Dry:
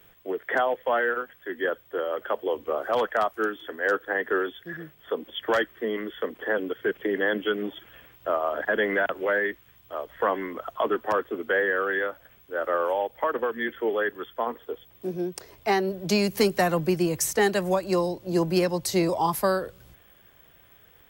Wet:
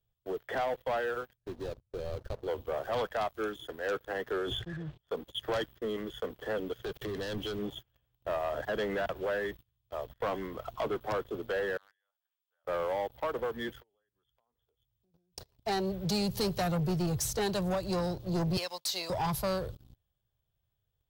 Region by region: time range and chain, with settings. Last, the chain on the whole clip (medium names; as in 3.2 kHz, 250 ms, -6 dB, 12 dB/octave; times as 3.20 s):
1.37–2.48 s: median filter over 41 samples + compression 3:1, threshold -31 dBFS + bass shelf 170 Hz +6.5 dB
4.33–4.98 s: expander -43 dBFS + distance through air 130 m + decay stretcher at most 62 dB/s
6.84–7.59 s: waveshaping leveller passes 3 + gate -38 dBFS, range -8 dB + compression 4:1, threshold -32 dBFS
11.77–12.65 s: high-pass 910 Hz 24 dB/octave + dynamic bell 1.2 kHz, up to -8 dB, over -44 dBFS, Q 1.3 + compression 5:1, threshold -45 dBFS
13.79–15.33 s: peaking EQ 420 Hz -6 dB 2.1 oct + compression 8:1, threshold -45 dBFS
18.57–19.10 s: high-pass 960 Hz + dynamic bell 2.7 kHz, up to +4 dB, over -43 dBFS, Q 0.93
whole clip: gate -42 dBFS, range -10 dB; FFT filter 120 Hz 0 dB, 260 Hz -19 dB, 420 Hz -16 dB, 750 Hz -14 dB, 2.1 kHz -24 dB, 3.8 kHz -9 dB, 7.8 kHz -17 dB; waveshaping leveller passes 3